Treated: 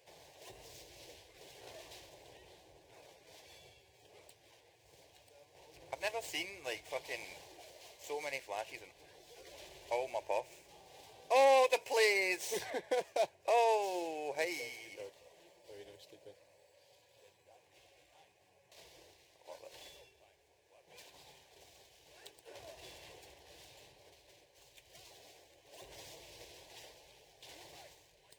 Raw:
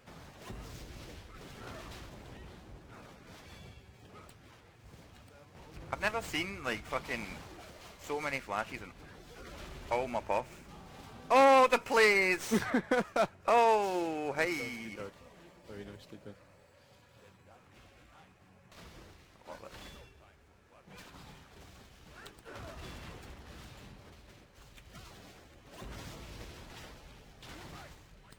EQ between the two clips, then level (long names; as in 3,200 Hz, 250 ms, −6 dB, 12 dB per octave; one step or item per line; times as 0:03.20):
high-pass filter 290 Hz 6 dB per octave
low-shelf EQ 410 Hz −3.5 dB
phaser with its sweep stopped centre 540 Hz, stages 4
0.0 dB